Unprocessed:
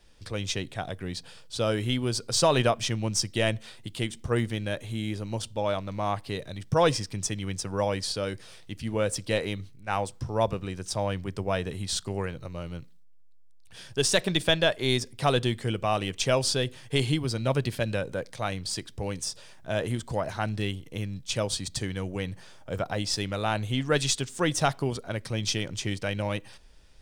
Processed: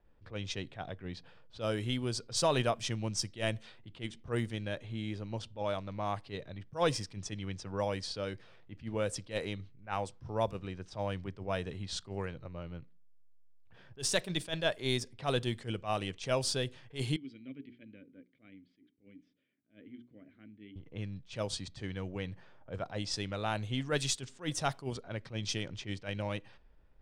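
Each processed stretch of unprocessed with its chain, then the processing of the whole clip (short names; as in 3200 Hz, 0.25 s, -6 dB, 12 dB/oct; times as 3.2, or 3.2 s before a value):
17.16–20.76 vowel filter i + notches 60/120/180/240/300/360/420 Hz
whole clip: low-pass opened by the level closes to 1300 Hz, open at -22 dBFS; attack slew limiter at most 240 dB/s; gain -6.5 dB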